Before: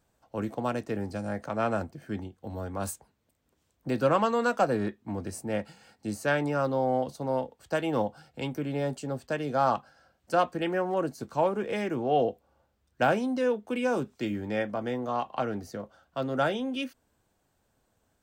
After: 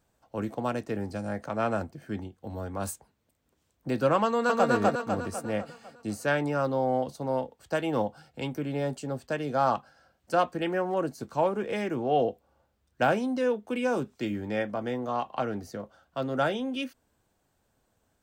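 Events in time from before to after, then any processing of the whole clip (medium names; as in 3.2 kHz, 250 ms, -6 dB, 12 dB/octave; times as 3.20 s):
4.24–4.70 s: echo throw 250 ms, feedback 50%, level -0.5 dB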